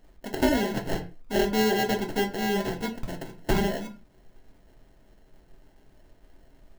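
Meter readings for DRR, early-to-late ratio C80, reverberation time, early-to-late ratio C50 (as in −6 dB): 2.5 dB, 18.0 dB, non-exponential decay, 13.5 dB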